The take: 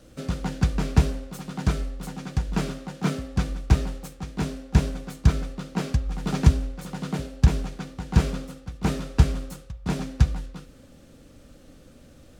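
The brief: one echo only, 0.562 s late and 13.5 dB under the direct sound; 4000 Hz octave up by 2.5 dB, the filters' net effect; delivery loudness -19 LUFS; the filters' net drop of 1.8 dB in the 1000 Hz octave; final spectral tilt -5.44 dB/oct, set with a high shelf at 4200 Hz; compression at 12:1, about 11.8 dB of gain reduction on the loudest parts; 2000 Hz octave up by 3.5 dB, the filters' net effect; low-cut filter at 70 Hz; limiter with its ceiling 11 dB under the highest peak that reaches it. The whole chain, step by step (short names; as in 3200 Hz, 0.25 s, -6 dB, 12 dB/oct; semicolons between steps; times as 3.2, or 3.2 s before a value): HPF 70 Hz; bell 1000 Hz -4 dB; bell 2000 Hz +6 dB; bell 4000 Hz +4.5 dB; high shelf 4200 Hz -5.5 dB; compressor 12:1, threshold -25 dBFS; limiter -23 dBFS; echo 0.562 s -13.5 dB; gain +17.5 dB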